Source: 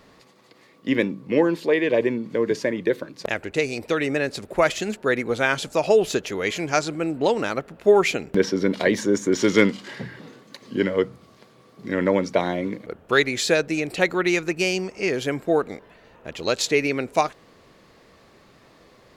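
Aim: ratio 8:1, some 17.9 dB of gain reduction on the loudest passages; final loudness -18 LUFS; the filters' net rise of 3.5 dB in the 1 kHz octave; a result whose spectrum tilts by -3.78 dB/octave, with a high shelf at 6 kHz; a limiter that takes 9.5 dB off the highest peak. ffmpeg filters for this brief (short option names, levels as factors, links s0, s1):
-af "equalizer=f=1000:t=o:g=4.5,highshelf=f=6000:g=9,acompressor=threshold=0.0316:ratio=8,volume=7.94,alimiter=limit=0.531:level=0:latency=1"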